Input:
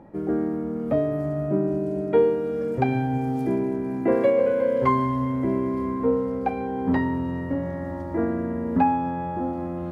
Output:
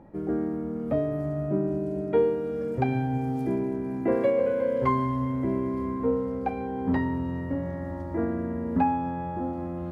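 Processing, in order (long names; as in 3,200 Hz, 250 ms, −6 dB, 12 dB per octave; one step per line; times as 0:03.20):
low-shelf EQ 95 Hz +7 dB
level −4 dB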